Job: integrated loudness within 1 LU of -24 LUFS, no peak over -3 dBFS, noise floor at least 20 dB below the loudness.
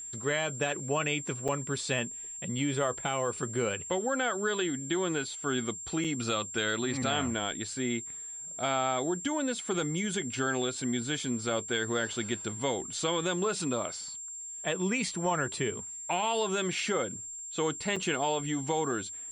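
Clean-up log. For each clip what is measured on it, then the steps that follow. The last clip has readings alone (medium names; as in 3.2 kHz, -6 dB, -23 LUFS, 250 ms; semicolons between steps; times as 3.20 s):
dropouts 3; longest dropout 5.4 ms; steady tone 7.4 kHz; tone level -39 dBFS; loudness -31.5 LUFS; peak level -18.0 dBFS; loudness target -24.0 LUFS
-> interpolate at 1.48/6.04/17.96 s, 5.4 ms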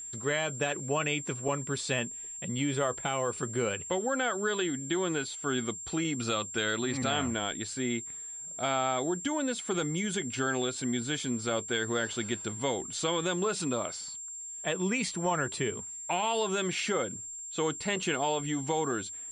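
dropouts 0; steady tone 7.4 kHz; tone level -39 dBFS
-> band-stop 7.4 kHz, Q 30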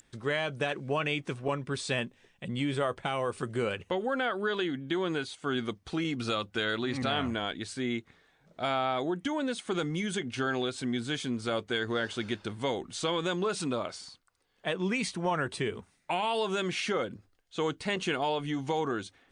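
steady tone not found; loudness -32.0 LUFS; peak level -19.0 dBFS; loudness target -24.0 LUFS
-> trim +8 dB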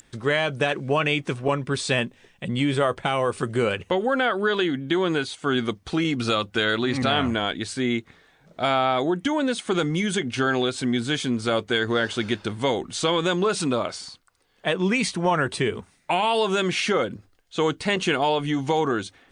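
loudness -24.0 LUFS; peak level -11.0 dBFS; noise floor -60 dBFS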